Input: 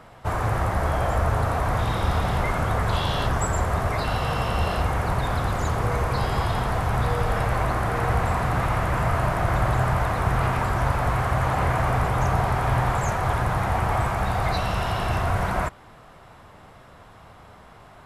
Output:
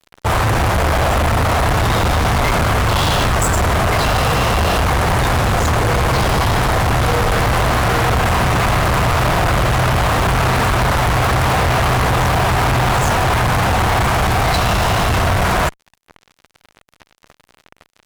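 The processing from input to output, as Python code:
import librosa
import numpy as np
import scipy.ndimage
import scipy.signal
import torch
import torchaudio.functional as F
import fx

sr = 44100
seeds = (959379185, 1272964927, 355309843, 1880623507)

y = fx.fuzz(x, sr, gain_db=33.0, gate_db=-40.0)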